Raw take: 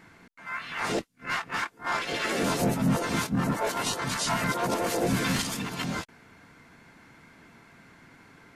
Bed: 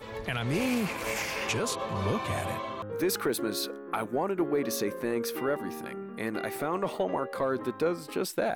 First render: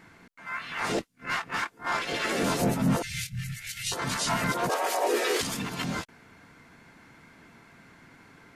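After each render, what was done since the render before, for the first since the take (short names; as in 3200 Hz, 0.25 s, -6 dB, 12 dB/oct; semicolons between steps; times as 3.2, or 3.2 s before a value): 3.02–3.92 elliptic band-stop 130–2100 Hz; 4.69–5.41 frequency shift +230 Hz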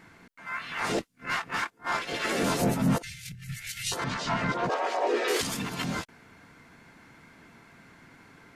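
1.7–2.25 upward expander, over -42 dBFS; 2.98–3.49 negative-ratio compressor -43 dBFS; 4.04–5.28 air absorption 150 m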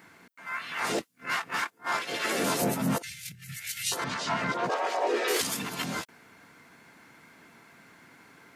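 HPF 230 Hz 6 dB/oct; high shelf 12000 Hz +11.5 dB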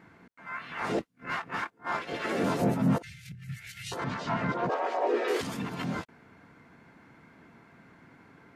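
LPF 1400 Hz 6 dB/oct; low shelf 170 Hz +8.5 dB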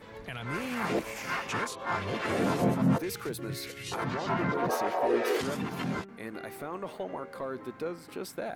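add bed -7.5 dB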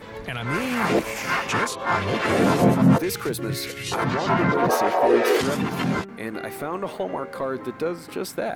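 gain +9 dB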